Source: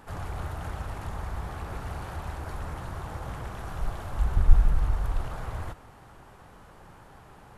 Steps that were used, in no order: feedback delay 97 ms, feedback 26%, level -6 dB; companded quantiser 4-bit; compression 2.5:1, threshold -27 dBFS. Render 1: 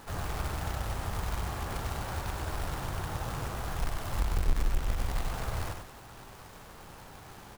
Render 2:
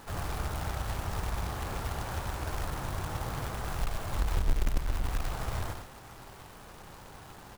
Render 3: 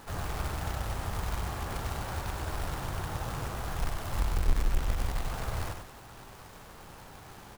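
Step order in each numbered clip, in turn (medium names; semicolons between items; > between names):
companded quantiser > feedback delay > compression; feedback delay > companded quantiser > compression; companded quantiser > compression > feedback delay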